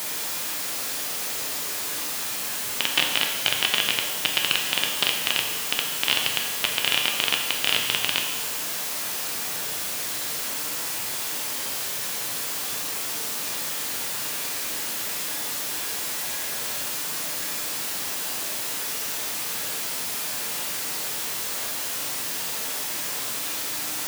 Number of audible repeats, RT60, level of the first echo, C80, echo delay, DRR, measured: none, 1.2 s, none, 7.0 dB, none, 1.5 dB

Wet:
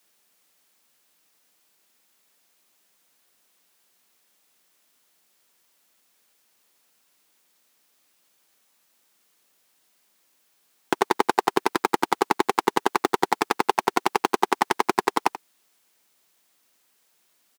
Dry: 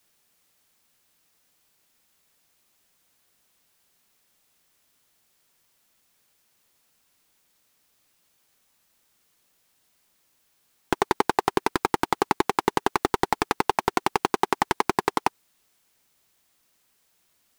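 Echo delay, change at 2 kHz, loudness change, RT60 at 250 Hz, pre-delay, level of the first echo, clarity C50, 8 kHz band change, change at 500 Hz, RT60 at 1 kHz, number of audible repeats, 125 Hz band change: 84 ms, +1.5 dB, +1.5 dB, none, none, -15.0 dB, none, +1.5 dB, +1.5 dB, none, 1, -5.5 dB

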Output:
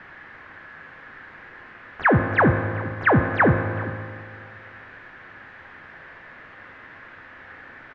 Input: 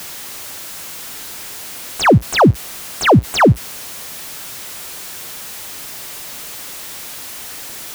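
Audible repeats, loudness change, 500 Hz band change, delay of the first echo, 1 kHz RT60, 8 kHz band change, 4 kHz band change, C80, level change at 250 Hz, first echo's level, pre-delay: 1, -1.5 dB, -7.5 dB, 0.397 s, 2.0 s, under -40 dB, -23.0 dB, 7.0 dB, -7.5 dB, -18.0 dB, 4 ms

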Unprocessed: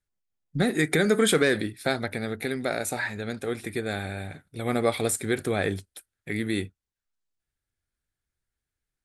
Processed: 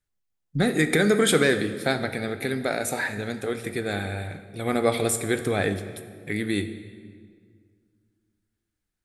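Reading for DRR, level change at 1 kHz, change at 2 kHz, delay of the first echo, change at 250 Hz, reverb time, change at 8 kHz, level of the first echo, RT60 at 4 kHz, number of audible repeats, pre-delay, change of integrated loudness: 9.5 dB, +2.0 dB, +2.0 dB, none, +2.0 dB, 2.0 s, +2.0 dB, none, 1.4 s, none, 3 ms, +2.0 dB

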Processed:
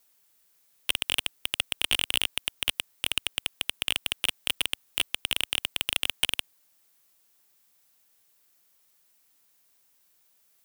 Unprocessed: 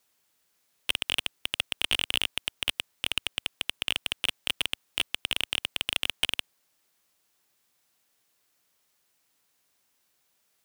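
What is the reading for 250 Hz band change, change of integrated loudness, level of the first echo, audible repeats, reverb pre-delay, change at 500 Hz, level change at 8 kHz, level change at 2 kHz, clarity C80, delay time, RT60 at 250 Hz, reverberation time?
0.0 dB, +1.0 dB, none, none, none, 0.0 dB, +4.5 dB, +0.5 dB, none, none, none, none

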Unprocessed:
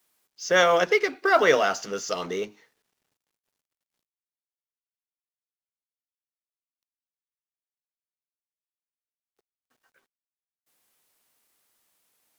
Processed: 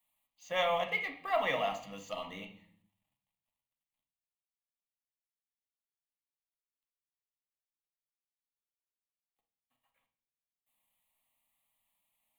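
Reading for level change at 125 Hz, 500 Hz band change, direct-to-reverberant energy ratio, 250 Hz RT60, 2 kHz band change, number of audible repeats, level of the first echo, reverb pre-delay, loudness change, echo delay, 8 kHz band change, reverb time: -9.5 dB, -13.0 dB, 4.0 dB, 0.85 s, -12.0 dB, none, none, 3 ms, -11.0 dB, none, n/a, 0.55 s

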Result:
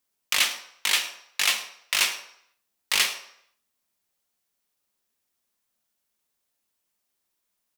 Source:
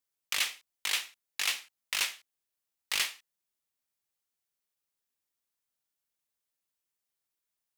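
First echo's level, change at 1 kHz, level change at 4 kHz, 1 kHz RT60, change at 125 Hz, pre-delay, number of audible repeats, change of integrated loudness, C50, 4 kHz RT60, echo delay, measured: -18.0 dB, +9.0 dB, +8.0 dB, 0.70 s, n/a, 3 ms, 1, +8.0 dB, 9.5 dB, 0.60 s, 0.105 s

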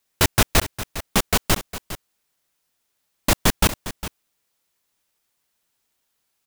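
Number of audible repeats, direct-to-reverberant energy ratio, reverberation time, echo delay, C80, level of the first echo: 1, none, none, 0.406 s, none, -13.5 dB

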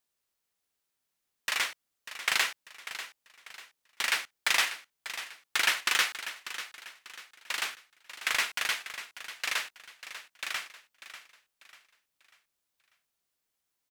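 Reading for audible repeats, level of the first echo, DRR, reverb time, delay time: 3, -12.5 dB, none, none, 0.593 s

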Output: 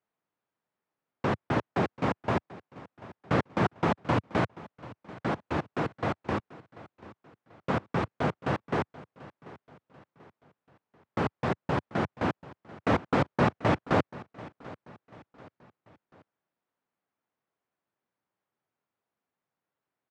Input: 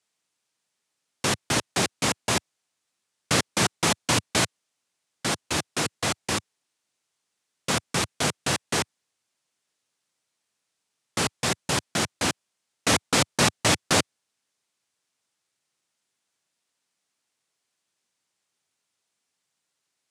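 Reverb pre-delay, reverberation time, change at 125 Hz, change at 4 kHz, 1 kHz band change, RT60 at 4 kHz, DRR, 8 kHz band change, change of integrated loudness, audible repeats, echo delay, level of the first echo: none, none, 0.0 dB, -18.0 dB, -1.5 dB, none, none, under -30 dB, -5.0 dB, 3, 0.738 s, -19.0 dB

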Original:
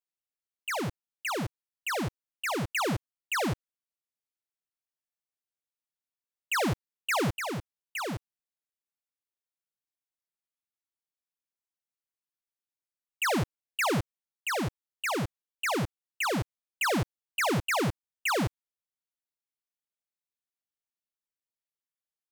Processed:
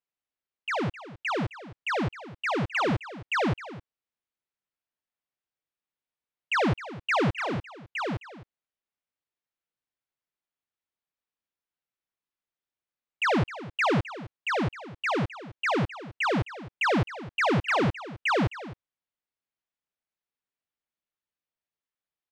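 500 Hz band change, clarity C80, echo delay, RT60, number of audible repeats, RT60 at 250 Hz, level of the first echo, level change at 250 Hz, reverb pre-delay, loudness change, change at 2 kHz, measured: +3.5 dB, none, 0.261 s, none, 1, none, -15.5 dB, +3.5 dB, none, +3.0 dB, +3.0 dB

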